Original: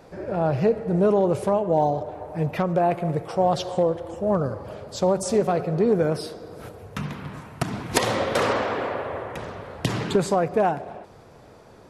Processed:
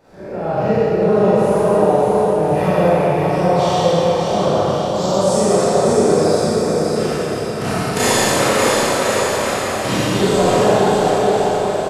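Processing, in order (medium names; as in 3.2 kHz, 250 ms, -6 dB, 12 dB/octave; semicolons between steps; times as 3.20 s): spectral sustain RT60 2.34 s; bouncing-ball echo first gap 590 ms, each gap 0.8×, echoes 5; Schroeder reverb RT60 1.6 s, combs from 29 ms, DRR -9 dB; trim -7.5 dB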